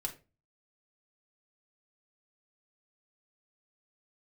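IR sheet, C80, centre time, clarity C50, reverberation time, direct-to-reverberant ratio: 19.0 dB, 12 ms, 13.5 dB, 0.30 s, 0.5 dB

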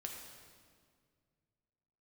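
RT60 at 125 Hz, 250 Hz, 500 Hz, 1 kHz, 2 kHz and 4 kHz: 2.8, 2.5, 2.2, 1.8, 1.6, 1.5 s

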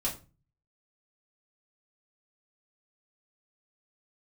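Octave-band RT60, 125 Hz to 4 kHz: 0.70, 0.50, 0.35, 0.30, 0.25, 0.25 s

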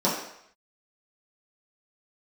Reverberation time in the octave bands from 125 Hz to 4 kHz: 0.55, 0.55, 0.70, 0.75, 0.75, 0.70 s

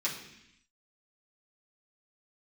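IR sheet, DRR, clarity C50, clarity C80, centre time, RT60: -7.5 dB, 6.5 dB, 9.0 dB, 30 ms, 0.80 s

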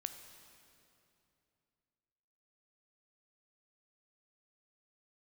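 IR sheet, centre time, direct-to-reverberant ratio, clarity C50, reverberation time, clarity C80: 32 ms, 7.5 dB, 8.5 dB, 2.8 s, 9.5 dB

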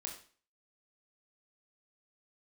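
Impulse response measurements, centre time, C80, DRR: 24 ms, 11.5 dB, 0.0 dB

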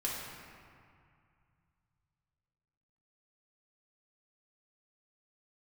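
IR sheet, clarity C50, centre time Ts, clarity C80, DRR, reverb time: -0.5 dB, 0.116 s, 1.0 dB, -5.5 dB, 2.2 s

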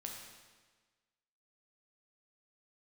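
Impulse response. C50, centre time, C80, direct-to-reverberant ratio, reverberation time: 2.5 dB, 57 ms, 4.5 dB, 0.0 dB, 1.4 s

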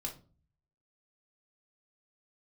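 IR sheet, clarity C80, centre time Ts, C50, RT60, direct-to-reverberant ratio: 18.0 dB, 15 ms, 11.0 dB, 0.40 s, 0.0 dB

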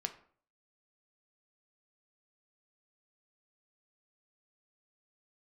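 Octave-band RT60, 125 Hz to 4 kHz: 0.55, 0.55, 0.50, 0.50, 0.40, 0.30 s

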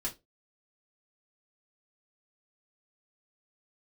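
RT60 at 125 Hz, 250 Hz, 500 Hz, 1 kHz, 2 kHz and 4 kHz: 0.25, 0.25, 0.25, 0.20, 0.15, 0.20 s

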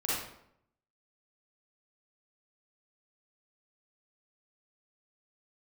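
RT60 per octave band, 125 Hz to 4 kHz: 0.90, 0.80, 0.75, 0.70, 0.60, 0.50 s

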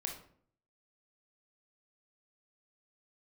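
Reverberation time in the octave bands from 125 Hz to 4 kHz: 0.75, 0.70, 0.60, 0.50, 0.45, 0.35 s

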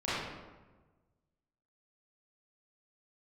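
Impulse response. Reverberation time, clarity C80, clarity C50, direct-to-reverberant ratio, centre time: 1.3 s, 0.5 dB, -3.0 dB, -12.5 dB, 97 ms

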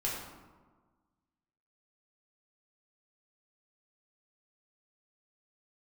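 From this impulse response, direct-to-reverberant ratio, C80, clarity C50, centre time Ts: -5.0 dB, 3.5 dB, 1.5 dB, 65 ms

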